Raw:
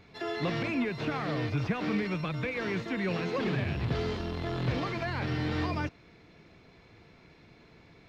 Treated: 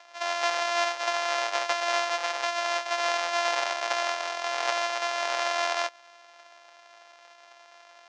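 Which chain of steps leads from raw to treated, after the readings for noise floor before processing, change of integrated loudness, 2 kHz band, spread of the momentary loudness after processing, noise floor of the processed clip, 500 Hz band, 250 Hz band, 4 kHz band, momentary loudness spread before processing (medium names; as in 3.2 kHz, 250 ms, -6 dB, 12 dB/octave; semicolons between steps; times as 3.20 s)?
-58 dBFS, +4.5 dB, +7.0 dB, 3 LU, -54 dBFS, +4.0 dB, -18.0 dB, +11.0 dB, 3 LU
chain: sorted samples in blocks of 128 samples; elliptic band-pass 650–6100 Hz, stop band 50 dB; trim +8.5 dB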